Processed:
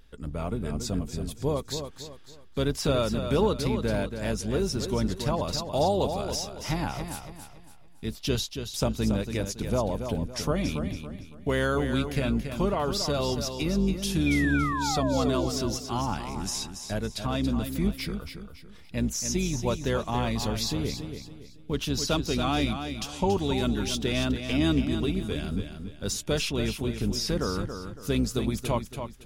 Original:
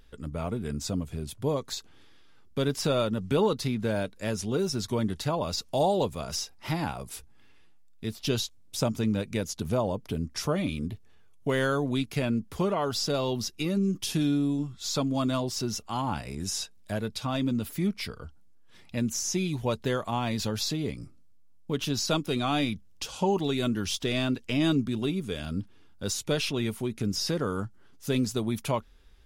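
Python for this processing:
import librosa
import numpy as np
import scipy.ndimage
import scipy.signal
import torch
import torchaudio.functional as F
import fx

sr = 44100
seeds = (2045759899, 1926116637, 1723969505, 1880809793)

p1 = fx.octave_divider(x, sr, octaves=2, level_db=-5.0)
p2 = fx.spec_paint(p1, sr, seeds[0], shape='fall', start_s=14.26, length_s=1.21, low_hz=310.0, high_hz=2500.0, level_db=-31.0)
y = p2 + fx.echo_feedback(p2, sr, ms=280, feedback_pct=35, wet_db=-8, dry=0)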